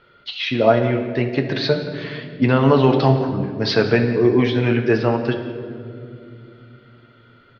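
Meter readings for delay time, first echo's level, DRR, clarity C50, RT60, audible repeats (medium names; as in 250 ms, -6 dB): 176 ms, -18.5 dB, 3.5 dB, 7.5 dB, 2.5 s, 1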